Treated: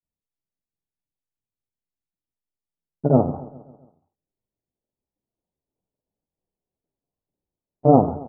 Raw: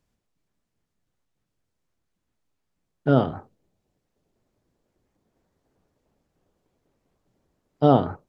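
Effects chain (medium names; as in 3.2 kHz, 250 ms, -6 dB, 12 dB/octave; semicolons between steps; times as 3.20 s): steep low-pass 1 kHz 36 dB/octave; gate with hold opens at -44 dBFS; granulator 100 ms, grains 20 per s, spray 33 ms, pitch spread up and down by 0 st; feedback delay 136 ms, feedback 55%, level -18 dB; trim +4.5 dB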